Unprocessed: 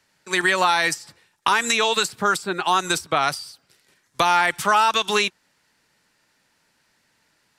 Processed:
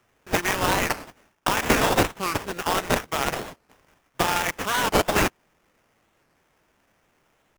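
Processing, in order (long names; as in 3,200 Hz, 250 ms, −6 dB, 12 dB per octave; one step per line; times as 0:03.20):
drawn EQ curve 1,700 Hz 0 dB, 3,800 Hz +14 dB, 7,800 Hz +7 dB
sample-rate reduction 4,200 Hz, jitter 20%
wow of a warped record 45 rpm, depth 250 cents
level −8 dB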